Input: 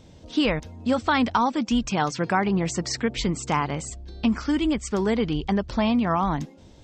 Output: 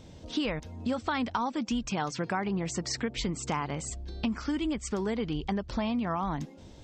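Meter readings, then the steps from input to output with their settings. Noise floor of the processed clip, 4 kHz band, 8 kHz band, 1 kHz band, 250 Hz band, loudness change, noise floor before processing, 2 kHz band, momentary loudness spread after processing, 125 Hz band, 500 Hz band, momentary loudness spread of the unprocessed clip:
−50 dBFS, −6.5 dB, −4.0 dB, −8.5 dB, −7.5 dB, −7.5 dB, −49 dBFS, −8.0 dB, 4 LU, −7.0 dB, −7.5 dB, 6 LU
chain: downward compressor 2.5 to 1, threshold −31 dBFS, peak gain reduction 9.5 dB

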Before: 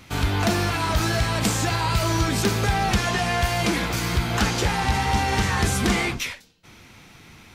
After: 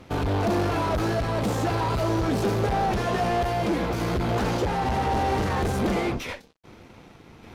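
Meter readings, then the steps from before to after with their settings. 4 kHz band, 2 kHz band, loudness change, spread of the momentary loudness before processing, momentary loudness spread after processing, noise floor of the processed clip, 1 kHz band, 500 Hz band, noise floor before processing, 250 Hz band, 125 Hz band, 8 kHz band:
−9.5 dB, −7.5 dB, −2.5 dB, 3 LU, 2 LU, −50 dBFS, −1.0 dB, +2.5 dB, −49 dBFS, −0.5 dB, −3.5 dB, −12.5 dB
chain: sample-and-hold tremolo
in parallel at −1 dB: brickwall limiter −22 dBFS, peak gain reduction 10.5 dB
on the sum: hard clipping −25 dBFS, distortion −6 dB
drawn EQ curve 150 Hz 0 dB, 500 Hz +7 dB, 2,000 Hz −6 dB, 8,000 Hz −7 dB, 14,000 Hz +6 dB
dead-zone distortion −54.5 dBFS
high-frequency loss of the air 60 metres
level +2 dB

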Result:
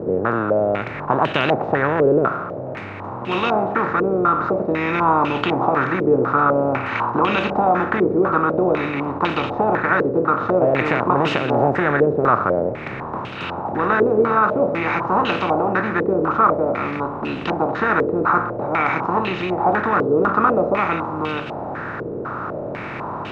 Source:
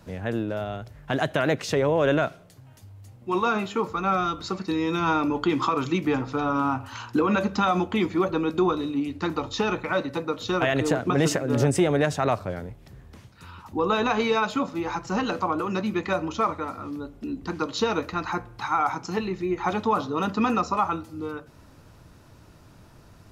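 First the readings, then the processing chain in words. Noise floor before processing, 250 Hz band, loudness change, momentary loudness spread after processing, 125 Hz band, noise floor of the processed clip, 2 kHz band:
−52 dBFS, +4.0 dB, +6.5 dB, 11 LU, +4.0 dB, −30 dBFS, +8.5 dB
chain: compressor on every frequency bin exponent 0.4
low-pass on a step sequencer 4 Hz 450–2,900 Hz
level −4.5 dB

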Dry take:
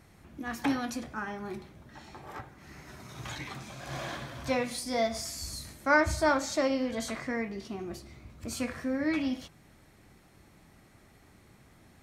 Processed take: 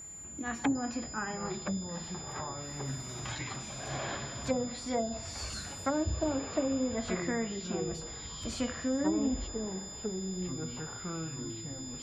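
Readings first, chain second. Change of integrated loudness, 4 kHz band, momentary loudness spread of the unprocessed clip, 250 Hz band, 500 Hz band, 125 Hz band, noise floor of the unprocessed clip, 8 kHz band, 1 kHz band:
−3.0 dB, 0.0 dB, 21 LU, +0.5 dB, −2.5 dB, +4.0 dB, −59 dBFS, +5.0 dB, −5.0 dB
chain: treble cut that deepens with the level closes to 400 Hz, closed at −24 dBFS
steady tone 7,100 Hz −44 dBFS
delay with pitch and tempo change per echo 752 ms, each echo −6 semitones, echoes 2, each echo −6 dB

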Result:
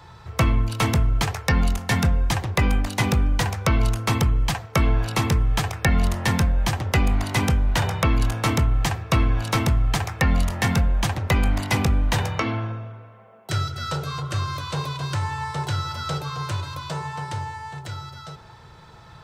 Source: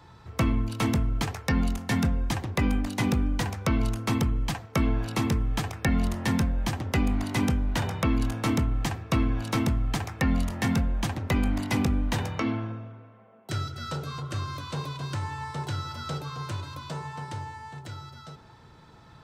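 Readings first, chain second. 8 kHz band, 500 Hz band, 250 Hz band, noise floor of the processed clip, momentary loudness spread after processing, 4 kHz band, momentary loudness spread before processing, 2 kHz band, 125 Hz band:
+7.0 dB, +5.0 dB, 0.0 dB, −46 dBFS, 9 LU, +7.0 dB, 10 LU, +7.0 dB, +6.0 dB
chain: parametric band 260 Hz −10 dB 0.78 octaves
level +7 dB

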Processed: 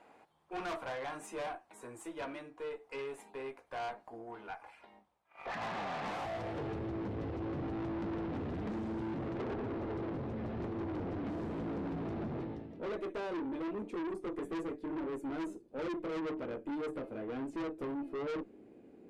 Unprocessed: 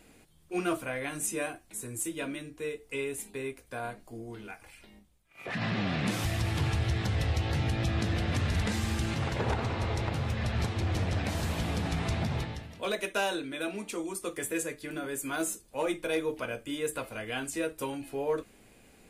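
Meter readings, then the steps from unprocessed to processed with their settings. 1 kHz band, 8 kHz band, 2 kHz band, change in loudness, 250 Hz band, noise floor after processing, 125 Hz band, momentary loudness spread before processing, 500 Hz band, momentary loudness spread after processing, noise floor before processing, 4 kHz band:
−4.0 dB, below −20 dB, −11.0 dB, −7.5 dB, −3.0 dB, −63 dBFS, −13.5 dB, 8 LU, −4.5 dB, 7 LU, −59 dBFS, −15.0 dB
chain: band-pass filter sweep 880 Hz → 330 Hz, 0:06.11–0:06.88
tube saturation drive 45 dB, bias 0.3
level +9.5 dB

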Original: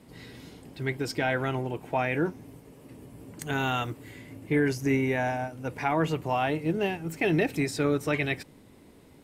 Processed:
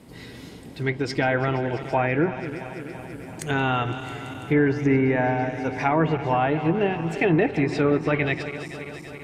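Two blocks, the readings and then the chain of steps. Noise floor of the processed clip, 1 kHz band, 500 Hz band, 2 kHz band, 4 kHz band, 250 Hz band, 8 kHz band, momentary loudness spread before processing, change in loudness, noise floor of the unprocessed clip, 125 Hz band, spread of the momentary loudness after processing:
−41 dBFS, +5.5 dB, +5.5 dB, +4.0 dB, +1.5 dB, +5.5 dB, −2.0 dB, 20 LU, +5.0 dB, −54 dBFS, +6.0 dB, 15 LU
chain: feedback delay that plays each chunk backwards 167 ms, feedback 81%, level −13 dB
treble cut that deepens with the level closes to 2,100 Hz, closed at −22 dBFS
level +5 dB

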